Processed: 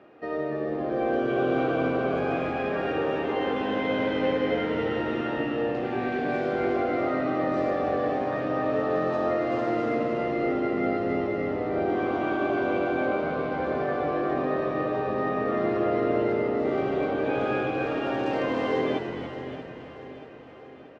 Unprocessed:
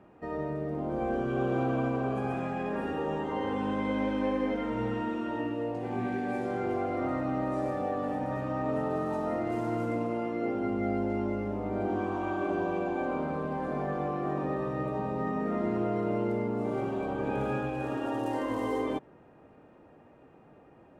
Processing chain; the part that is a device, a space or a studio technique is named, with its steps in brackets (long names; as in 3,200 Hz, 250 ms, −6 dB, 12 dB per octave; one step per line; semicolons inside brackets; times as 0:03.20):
bass and treble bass −9 dB, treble +8 dB
frequency-shifting delay pedal into a guitar cabinet (echo with shifted repeats 286 ms, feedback 52%, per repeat −90 Hz, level −8 dB; loudspeaker in its box 98–4,400 Hz, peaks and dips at 110 Hz −3 dB, 190 Hz −7 dB, 930 Hz −9 dB)
repeating echo 631 ms, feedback 54%, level −13 dB
level +7 dB